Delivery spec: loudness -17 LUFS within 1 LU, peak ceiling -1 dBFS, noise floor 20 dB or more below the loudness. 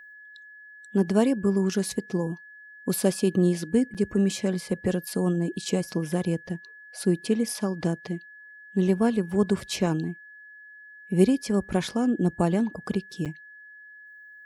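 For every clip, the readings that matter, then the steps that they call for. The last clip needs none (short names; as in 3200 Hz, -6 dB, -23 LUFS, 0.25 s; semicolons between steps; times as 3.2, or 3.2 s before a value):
dropouts 2; longest dropout 7.4 ms; steady tone 1700 Hz; tone level -45 dBFS; loudness -26.0 LUFS; peak -8.0 dBFS; loudness target -17.0 LUFS
-> interpolate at 3.94/13.25, 7.4 ms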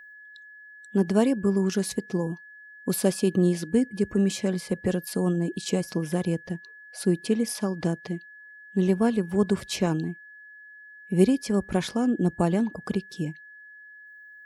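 dropouts 0; steady tone 1700 Hz; tone level -45 dBFS
-> notch 1700 Hz, Q 30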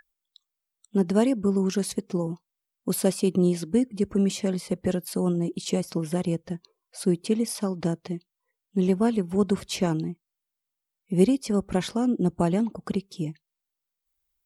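steady tone none; loudness -26.0 LUFS; peak -8.0 dBFS; loudness target -17.0 LUFS
-> gain +9 dB; limiter -1 dBFS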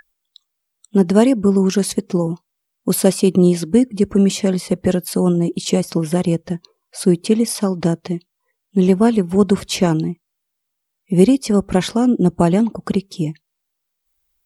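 loudness -17.5 LUFS; peak -1.0 dBFS; noise floor -77 dBFS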